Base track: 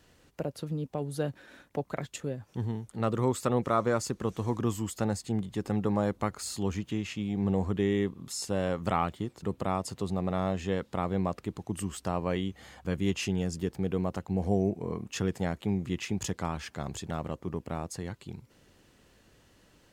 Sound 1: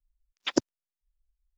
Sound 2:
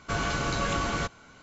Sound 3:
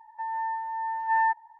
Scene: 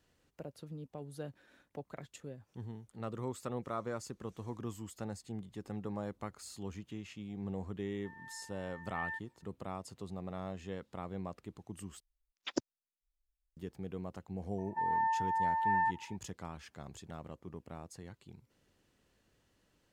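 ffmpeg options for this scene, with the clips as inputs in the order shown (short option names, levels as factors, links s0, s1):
-filter_complex "[3:a]asplit=2[s0][s1];[0:a]volume=0.251[s2];[s0]asuperstop=centerf=690:order=4:qfactor=0.67[s3];[s1]acompressor=threshold=0.0501:ratio=6:attack=3.2:release=140:knee=1:detection=peak[s4];[s2]asplit=2[s5][s6];[s5]atrim=end=12.004[s7];[1:a]atrim=end=1.57,asetpts=PTS-STARTPTS,volume=0.316[s8];[s6]atrim=start=13.566[s9];[s3]atrim=end=1.59,asetpts=PTS-STARTPTS,volume=0.376,afade=t=in:d=0.004:c=hsin,afade=t=out:st=1.586:d=0.004:c=hsin,adelay=346626S[s10];[s4]atrim=end=1.59,asetpts=PTS-STARTPTS,volume=0.891,afade=t=in:d=0.004:c=hsin,afade=t=out:st=1.586:d=0.004:c=hsin,adelay=14580[s11];[s7][s8]acrossfade=d=0.004:c1=hsin:c2=hsin[s12];[s12][s9]acrossfade=d=0.004:c1=hsin:c2=hsin[s13];[s13][s10][s11]amix=inputs=3:normalize=0"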